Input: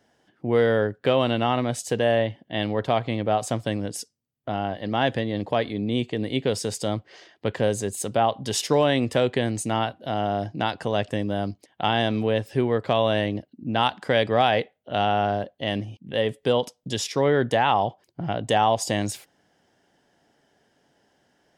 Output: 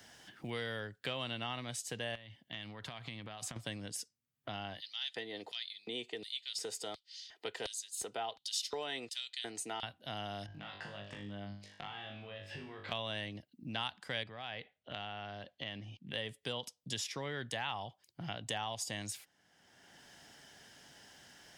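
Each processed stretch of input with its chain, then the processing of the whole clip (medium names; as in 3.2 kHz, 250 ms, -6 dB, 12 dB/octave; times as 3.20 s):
2.15–3.56 s: compression 16:1, threshold -29 dBFS + dynamic bell 510 Hz, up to -5 dB, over -46 dBFS, Q 1.1
4.80–9.83 s: LFO high-pass square 1.4 Hz 450–4100 Hz + comb of notches 560 Hz
10.46–12.92 s: low-pass 2.5 kHz + compression 12:1, threshold -35 dBFS + flutter echo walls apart 3.4 m, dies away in 0.45 s
14.23–16.11 s: low-pass 4.3 kHz + compression 2.5:1, threshold -30 dBFS
whole clip: amplifier tone stack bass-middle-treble 5-5-5; three bands compressed up and down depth 70%; trim -1 dB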